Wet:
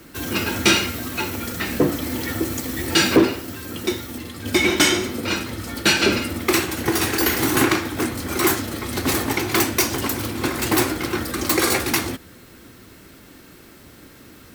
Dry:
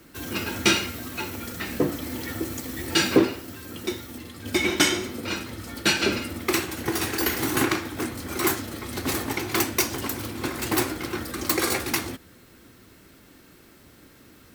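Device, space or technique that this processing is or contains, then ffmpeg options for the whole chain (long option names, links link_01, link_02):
saturation between pre-emphasis and de-emphasis: -af "highshelf=frequency=4800:gain=7,asoftclip=type=tanh:threshold=-12.5dB,highshelf=frequency=4800:gain=-7,volume=6.5dB"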